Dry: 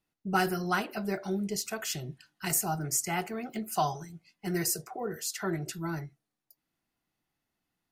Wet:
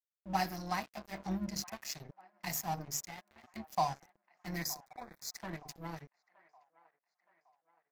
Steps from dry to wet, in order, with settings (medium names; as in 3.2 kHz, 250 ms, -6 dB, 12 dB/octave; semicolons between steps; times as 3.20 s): high-pass 77 Hz 12 dB/octave; hum notches 50/100/150/200/250 Hz; 1.19–1.64 s: bass shelf 200 Hz +10.5 dB; 3.02–3.51 s: compression 8:1, threshold -36 dBFS, peak gain reduction 10 dB; static phaser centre 2.1 kHz, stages 8; AM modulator 140 Hz, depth 20%; crossover distortion -43.5 dBFS; 4.62–5.37 s: Butterworth band-stop 2.9 kHz, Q 2.2; feedback echo behind a band-pass 919 ms, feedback 47%, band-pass 1.1 kHz, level -20 dB; trim +1 dB